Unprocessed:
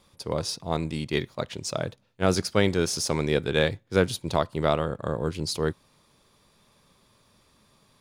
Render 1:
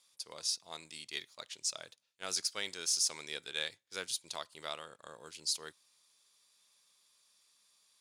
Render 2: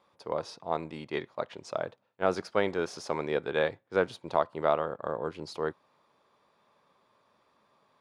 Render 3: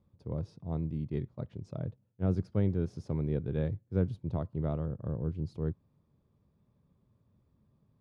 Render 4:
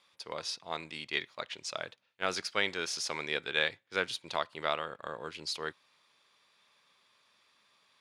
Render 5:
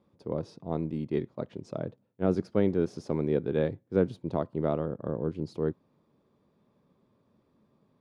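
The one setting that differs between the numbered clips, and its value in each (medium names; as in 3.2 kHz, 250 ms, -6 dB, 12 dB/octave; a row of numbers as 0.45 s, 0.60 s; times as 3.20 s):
band-pass filter, frequency: 7.5 kHz, 870 Hz, 100 Hz, 2.4 kHz, 270 Hz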